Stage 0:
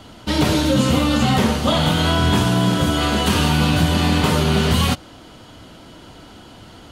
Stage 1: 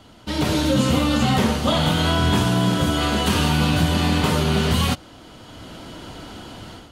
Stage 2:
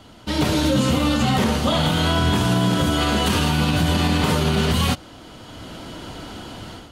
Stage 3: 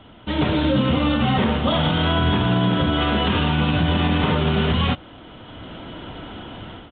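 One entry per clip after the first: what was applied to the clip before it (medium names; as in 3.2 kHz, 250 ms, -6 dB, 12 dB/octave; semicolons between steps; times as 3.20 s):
level rider gain up to 11 dB; trim -6.5 dB
loudness maximiser +11 dB; trim -9 dB
resampled via 8 kHz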